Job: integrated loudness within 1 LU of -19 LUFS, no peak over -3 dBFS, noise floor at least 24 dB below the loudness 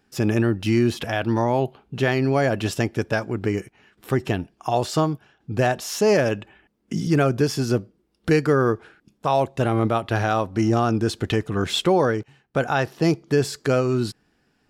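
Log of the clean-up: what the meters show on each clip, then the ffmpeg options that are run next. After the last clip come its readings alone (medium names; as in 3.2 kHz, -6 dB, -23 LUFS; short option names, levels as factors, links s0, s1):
loudness -22.5 LUFS; peak level -9.0 dBFS; loudness target -19.0 LUFS
-> -af "volume=1.5"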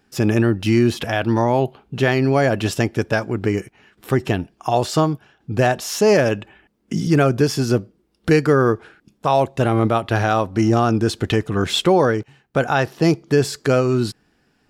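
loudness -19.0 LUFS; peak level -5.5 dBFS; noise floor -64 dBFS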